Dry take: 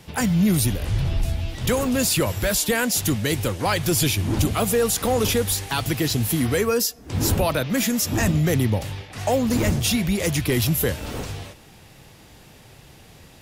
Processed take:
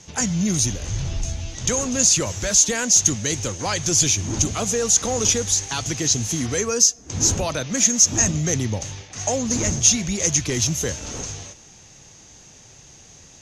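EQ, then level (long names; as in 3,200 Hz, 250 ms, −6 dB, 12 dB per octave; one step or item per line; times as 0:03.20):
low-pass with resonance 6,400 Hz, resonance Q 15
−3.5 dB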